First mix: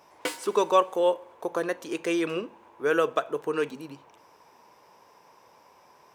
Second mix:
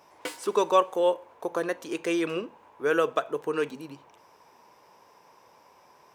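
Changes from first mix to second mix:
speech: send off
background −4.5 dB

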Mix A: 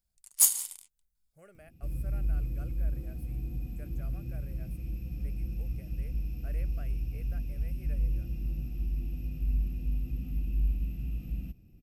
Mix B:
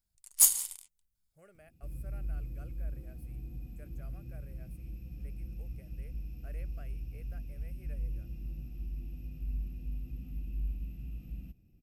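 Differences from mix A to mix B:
speech −3.5 dB
first sound: remove Butterworth high-pass 150 Hz 48 dB per octave
second sound −7.0 dB

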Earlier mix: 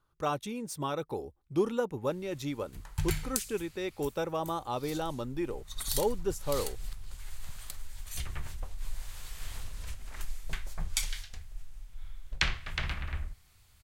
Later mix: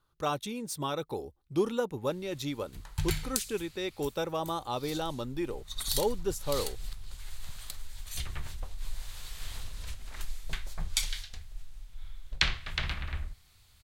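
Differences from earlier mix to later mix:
speech: add high-shelf EQ 8,300 Hz +5 dB
master: add parametric band 3,900 Hz +5.5 dB 0.69 octaves

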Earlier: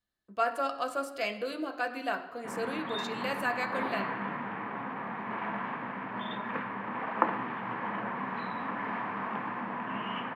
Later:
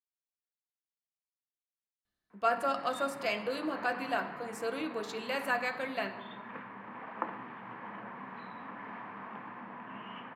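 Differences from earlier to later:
speech: entry +2.05 s
background −9.5 dB

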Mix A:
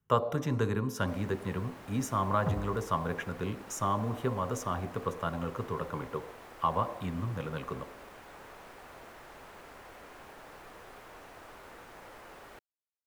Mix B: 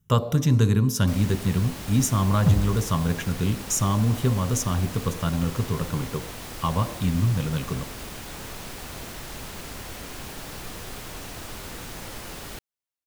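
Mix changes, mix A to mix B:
first sound +6.5 dB
master: remove three-way crossover with the lows and the highs turned down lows −14 dB, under 370 Hz, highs −15 dB, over 2,100 Hz

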